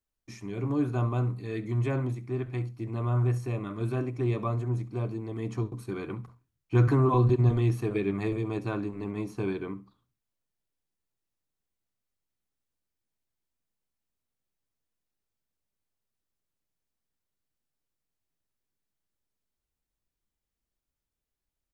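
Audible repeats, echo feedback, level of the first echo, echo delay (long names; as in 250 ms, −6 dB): 2, 20%, −19.0 dB, 67 ms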